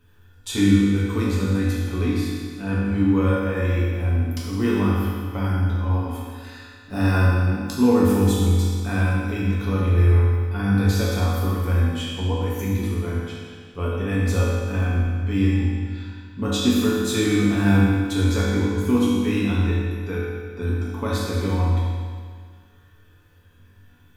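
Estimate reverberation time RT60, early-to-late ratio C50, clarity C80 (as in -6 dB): 1.9 s, -2.0 dB, 0.0 dB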